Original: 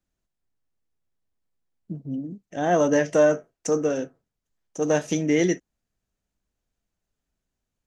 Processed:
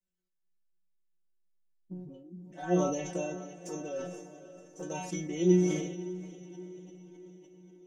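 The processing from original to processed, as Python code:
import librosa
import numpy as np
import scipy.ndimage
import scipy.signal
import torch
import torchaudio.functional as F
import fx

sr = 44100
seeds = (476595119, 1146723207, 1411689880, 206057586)

y = fx.peak_eq(x, sr, hz=340.0, db=5.0, octaves=0.65)
y = fx.env_flanger(y, sr, rest_ms=10.4, full_db=-16.5)
y = fx.stiff_resonator(y, sr, f0_hz=180.0, decay_s=0.36, stiffness=0.002)
y = fx.echo_diffused(y, sr, ms=533, feedback_pct=55, wet_db=-13.0)
y = fx.sustainer(y, sr, db_per_s=48.0)
y = y * 10.0 ** (3.5 / 20.0)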